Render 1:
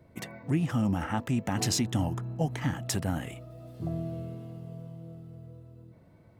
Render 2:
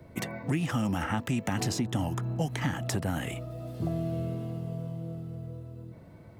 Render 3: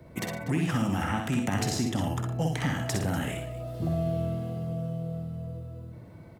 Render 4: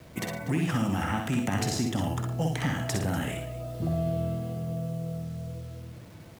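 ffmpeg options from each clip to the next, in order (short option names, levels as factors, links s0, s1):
-filter_complex "[0:a]acrossover=split=300|1400[s0][s1][s2];[s0]acompressor=threshold=0.0141:ratio=4[s3];[s1]acompressor=threshold=0.00794:ratio=4[s4];[s2]acompressor=threshold=0.00708:ratio=4[s5];[s3][s4][s5]amix=inputs=3:normalize=0,volume=2.24"
-af "aecho=1:1:50|62|112|146|243:0.335|0.596|0.251|0.119|0.168"
-af "acrusher=bits=8:mix=0:aa=0.000001"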